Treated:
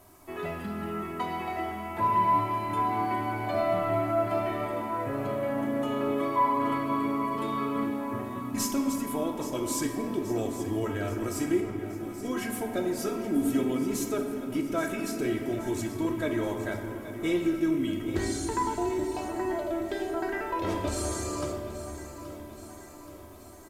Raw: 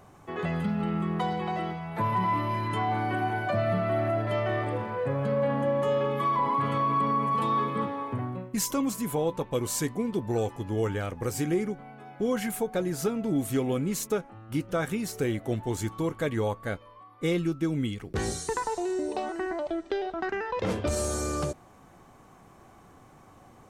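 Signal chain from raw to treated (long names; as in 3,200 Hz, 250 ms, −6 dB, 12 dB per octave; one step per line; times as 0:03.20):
comb filter 3.1 ms, depth 70%
background noise violet −53 dBFS
0:11.60–0:12.25: downward compressor, threshold −38 dBFS, peak gain reduction 13 dB
repeating echo 827 ms, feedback 59%, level −13 dB
on a send at −2 dB: convolution reverb RT60 3.0 s, pre-delay 6 ms
on the sum: downsampling to 32,000 Hz
level −4.5 dB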